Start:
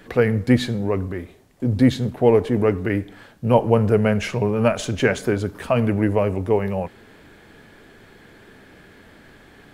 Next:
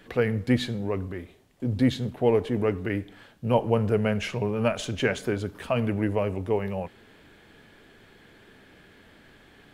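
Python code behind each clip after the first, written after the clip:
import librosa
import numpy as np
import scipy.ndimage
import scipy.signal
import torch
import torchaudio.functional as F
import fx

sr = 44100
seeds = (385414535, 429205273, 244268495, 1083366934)

y = fx.peak_eq(x, sr, hz=3100.0, db=4.5, octaves=0.8)
y = y * 10.0 ** (-6.5 / 20.0)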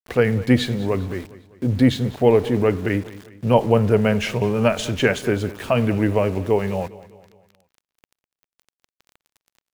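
y = np.where(np.abs(x) >= 10.0 ** (-43.5 / 20.0), x, 0.0)
y = fx.echo_feedback(y, sr, ms=202, feedback_pct=47, wet_db=-18.5)
y = y * 10.0 ** (6.5 / 20.0)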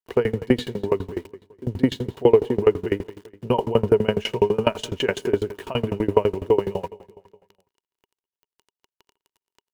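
y = fx.small_body(x, sr, hz=(400.0, 940.0, 2900.0), ring_ms=35, db=12)
y = fx.tremolo_decay(y, sr, direction='decaying', hz=12.0, depth_db=25)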